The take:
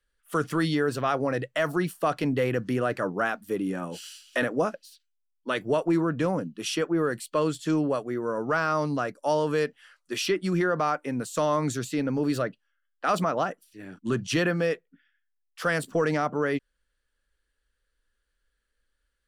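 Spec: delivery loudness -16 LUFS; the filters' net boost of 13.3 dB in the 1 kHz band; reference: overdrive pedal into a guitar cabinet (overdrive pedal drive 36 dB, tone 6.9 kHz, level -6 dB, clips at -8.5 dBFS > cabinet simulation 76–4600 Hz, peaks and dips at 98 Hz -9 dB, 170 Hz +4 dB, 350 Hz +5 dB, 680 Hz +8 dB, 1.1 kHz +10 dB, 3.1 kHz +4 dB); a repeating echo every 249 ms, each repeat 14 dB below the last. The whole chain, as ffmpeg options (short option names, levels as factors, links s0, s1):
-filter_complex "[0:a]equalizer=f=1000:t=o:g=8,aecho=1:1:249|498:0.2|0.0399,asplit=2[s0][s1];[s1]highpass=f=720:p=1,volume=63.1,asoftclip=type=tanh:threshold=0.376[s2];[s0][s2]amix=inputs=2:normalize=0,lowpass=f=6900:p=1,volume=0.501,highpass=76,equalizer=f=98:t=q:w=4:g=-9,equalizer=f=170:t=q:w=4:g=4,equalizer=f=350:t=q:w=4:g=5,equalizer=f=680:t=q:w=4:g=8,equalizer=f=1100:t=q:w=4:g=10,equalizer=f=3100:t=q:w=4:g=4,lowpass=f=4600:w=0.5412,lowpass=f=4600:w=1.3066,volume=0.562"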